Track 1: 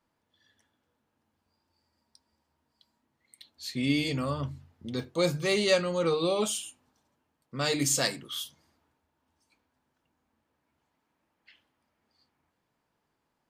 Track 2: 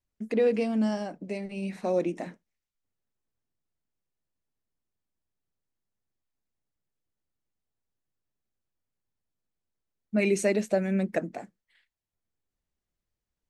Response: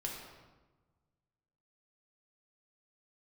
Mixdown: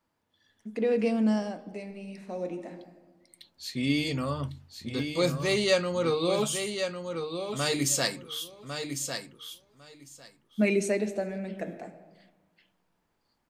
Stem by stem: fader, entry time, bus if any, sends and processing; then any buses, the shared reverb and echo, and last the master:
0.0 dB, 0.00 s, no send, echo send −7 dB, no processing
−0.5 dB, 0.45 s, send −12 dB, no echo send, automatic ducking −13 dB, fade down 0.85 s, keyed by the first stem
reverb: on, RT60 1.2 s, pre-delay 4 ms
echo: repeating echo 1,102 ms, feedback 15%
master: no processing

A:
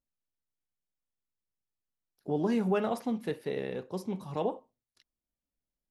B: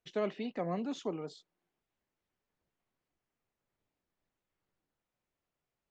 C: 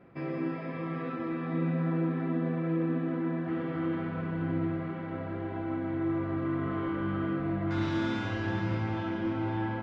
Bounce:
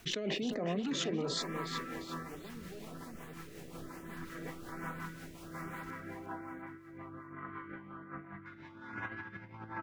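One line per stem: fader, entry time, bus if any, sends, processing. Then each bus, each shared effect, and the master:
−19.0 dB, 0.00 s, no send, no echo send, no processing
−2.5 dB, 0.00 s, no send, echo send −8.5 dB, envelope flattener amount 100%
−11.5 dB, 0.75 s, no send, no echo send, compressor whose output falls as the input rises −34 dBFS, ratio −0.5; flat-topped bell 1,400 Hz +13 dB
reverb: not used
echo: repeating echo 357 ms, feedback 46%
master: mains-hum notches 50/100 Hz; rotating-speaker cabinet horn 5.5 Hz; auto-filter notch saw up 1.2 Hz 490–6,500 Hz

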